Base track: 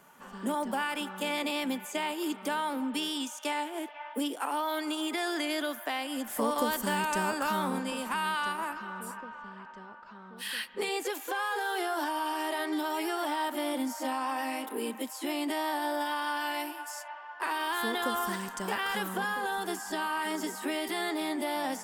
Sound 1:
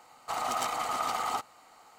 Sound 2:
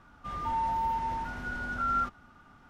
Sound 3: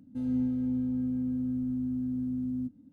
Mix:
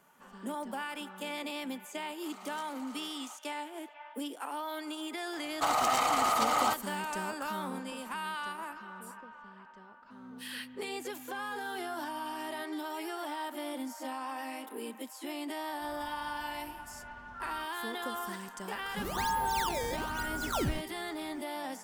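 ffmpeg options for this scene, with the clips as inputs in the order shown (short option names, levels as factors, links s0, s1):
-filter_complex "[1:a]asplit=2[s0][s1];[2:a]asplit=2[s2][s3];[0:a]volume=0.473[s4];[s0]highpass=f=1400:p=1[s5];[s1]alimiter=level_in=15:limit=0.891:release=50:level=0:latency=1[s6];[3:a]highpass=f=860:p=1[s7];[s3]acrusher=samples=18:mix=1:aa=0.000001:lfo=1:lforange=28.8:lforate=1.1[s8];[s5]atrim=end=1.98,asetpts=PTS-STARTPTS,volume=0.168,afade=t=in:d=0.004:c=hsin,afade=t=out:st=1.976:d=0.004:c=hsin,adelay=1960[s9];[s6]atrim=end=1.98,asetpts=PTS-STARTPTS,volume=0.133,afade=t=in:d=0.004:c=hsin,afade=t=out:st=1.976:d=0.004:c=hsin,adelay=235053S[s10];[s7]atrim=end=2.92,asetpts=PTS-STARTPTS,volume=0.335,afade=t=in:d=0.004:c=hsin,afade=t=out:st=2.916:d=0.004:c=hsin,adelay=9950[s11];[s2]atrim=end=2.69,asetpts=PTS-STARTPTS,volume=0.178,afade=t=in:d=0.004:c=hsin,afade=t=out:st=2.686:d=0.004:c=hsin,adelay=686196S[s12];[s8]atrim=end=2.69,asetpts=PTS-STARTPTS,volume=0.794,afade=t=in:d=0.004:c=hsin,afade=t=out:st=2.686:d=0.004:c=hsin,adelay=18720[s13];[s4][s9][s10][s11][s12][s13]amix=inputs=6:normalize=0"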